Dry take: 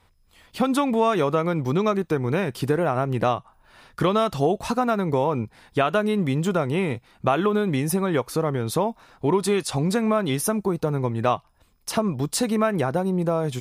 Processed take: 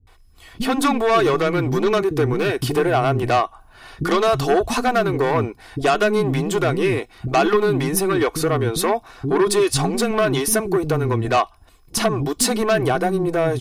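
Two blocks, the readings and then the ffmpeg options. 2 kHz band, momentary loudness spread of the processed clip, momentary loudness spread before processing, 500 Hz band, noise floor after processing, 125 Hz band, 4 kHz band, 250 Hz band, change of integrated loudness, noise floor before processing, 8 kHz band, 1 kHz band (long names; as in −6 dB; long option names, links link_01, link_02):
+7.0 dB, 5 LU, 5 LU, +4.5 dB, −51 dBFS, +2.5 dB, +7.0 dB, +2.0 dB, +4.0 dB, −61 dBFS, +7.5 dB, +4.5 dB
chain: -filter_complex "[0:a]aeval=exprs='0.376*(cos(1*acos(clip(val(0)/0.376,-1,1)))-cos(1*PI/2))+0.106*(cos(5*acos(clip(val(0)/0.376,-1,1)))-cos(5*PI/2))':channel_layout=same,aecho=1:1:2.7:0.49,acrossover=split=280[link_01][link_02];[link_02]adelay=70[link_03];[link_01][link_03]amix=inputs=2:normalize=0"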